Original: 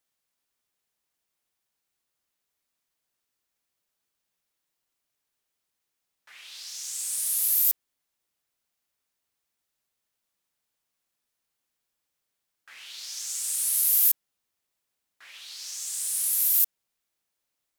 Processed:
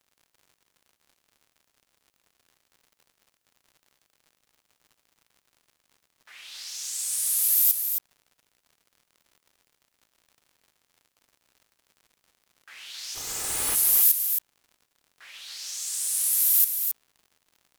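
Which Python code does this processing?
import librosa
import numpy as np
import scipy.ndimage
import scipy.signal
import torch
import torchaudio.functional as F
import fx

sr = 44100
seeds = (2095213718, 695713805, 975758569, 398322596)

y = fx.lower_of_two(x, sr, delay_ms=2.4, at=(13.14, 13.74), fade=0.02)
y = fx.dmg_crackle(y, sr, seeds[0], per_s=80.0, level_db=-48.0)
y = y + 10.0 ** (-7.0 / 20.0) * np.pad(y, (int(270 * sr / 1000.0), 0))[:len(y)]
y = y * 10.0 ** (1.5 / 20.0)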